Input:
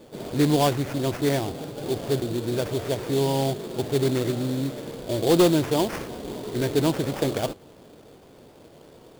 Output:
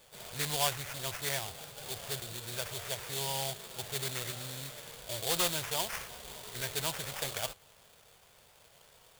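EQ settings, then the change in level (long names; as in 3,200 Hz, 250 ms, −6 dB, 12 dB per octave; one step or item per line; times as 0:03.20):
guitar amp tone stack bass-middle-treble 10-0-10
low-shelf EQ 150 Hz −6 dB
parametric band 4,400 Hz −3.5 dB 0.88 octaves
+2.0 dB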